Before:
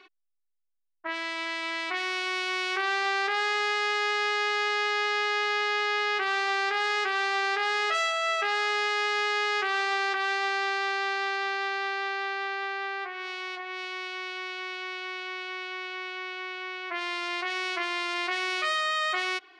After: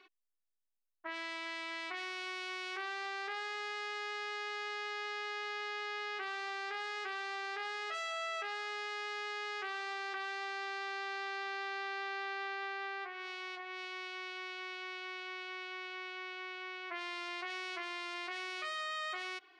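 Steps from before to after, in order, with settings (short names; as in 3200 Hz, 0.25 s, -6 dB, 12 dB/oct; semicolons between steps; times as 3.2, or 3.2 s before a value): limiter -20.5 dBFS, peak gain reduction 7 dB; gain -8 dB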